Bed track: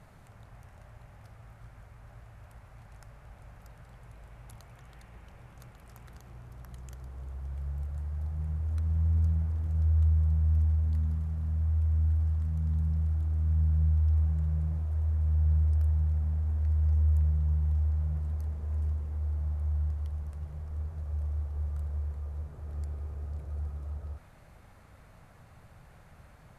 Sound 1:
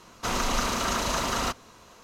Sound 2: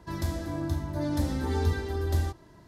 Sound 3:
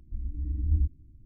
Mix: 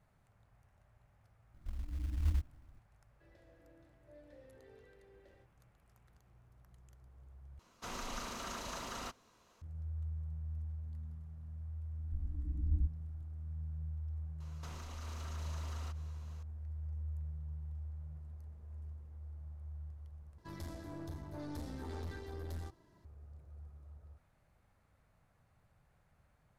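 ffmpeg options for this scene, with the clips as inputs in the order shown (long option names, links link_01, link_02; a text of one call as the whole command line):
ffmpeg -i bed.wav -i cue0.wav -i cue1.wav -i cue2.wav -filter_complex "[3:a]asplit=2[link_01][link_02];[2:a]asplit=2[link_03][link_04];[1:a]asplit=2[link_05][link_06];[0:a]volume=-16.5dB[link_07];[link_01]acrusher=bits=6:mode=log:mix=0:aa=0.000001[link_08];[link_03]asplit=3[link_09][link_10][link_11];[link_09]bandpass=frequency=530:width_type=q:width=8,volume=0dB[link_12];[link_10]bandpass=frequency=1840:width_type=q:width=8,volume=-6dB[link_13];[link_11]bandpass=frequency=2480:width_type=q:width=8,volume=-9dB[link_14];[link_12][link_13][link_14]amix=inputs=3:normalize=0[link_15];[link_06]acompressor=threshold=-37dB:ratio=6:attack=3.2:release=140:knee=1:detection=peak[link_16];[link_04]aeval=exprs='(tanh(25.1*val(0)+0.45)-tanh(0.45))/25.1':channel_layout=same[link_17];[link_07]asplit=3[link_18][link_19][link_20];[link_18]atrim=end=7.594[link_21];[link_05]atrim=end=2.03,asetpts=PTS-STARTPTS,volume=-16dB[link_22];[link_19]atrim=start=9.616:end=20.384[link_23];[link_17]atrim=end=2.67,asetpts=PTS-STARTPTS,volume=-11dB[link_24];[link_20]atrim=start=23.046[link_25];[link_08]atrim=end=1.25,asetpts=PTS-STARTPTS,volume=-7.5dB,afade=type=in:duration=0.004:curve=hsin,afade=type=out:start_time=1.246:duration=0.004:curve=hsin,adelay=1540[link_26];[link_15]atrim=end=2.67,asetpts=PTS-STARTPTS,volume=-15dB,afade=type=in:duration=0.004:curve=hsin,afade=type=out:start_time=2.666:duration=0.004:curve=hsin,adelay=138033S[link_27];[link_02]atrim=end=1.25,asetpts=PTS-STARTPTS,volume=-7dB,afade=type=in:duration=0.004:curve=hsin,afade=type=out:start_time=1.246:duration=0.004:curve=hsin,adelay=12000[link_28];[link_16]atrim=end=2.03,asetpts=PTS-STARTPTS,volume=-12dB,afade=type=in:duration=0.004:curve=hsin,afade=type=out:start_time=2.026:duration=0.004:curve=hsin,adelay=14400[link_29];[link_21][link_22]acrossfade=duration=0.004:curve1=hsin:curve2=hsin[link_30];[link_30][link_23]acrossfade=duration=0.004:curve1=hsin:curve2=hsin[link_31];[link_31][link_24]acrossfade=duration=0.004:curve1=hsin:curve2=hsin[link_32];[link_32][link_25]acrossfade=duration=0.004:curve1=hsin:curve2=hsin[link_33];[link_33][link_26][link_27][link_28][link_29]amix=inputs=5:normalize=0" out.wav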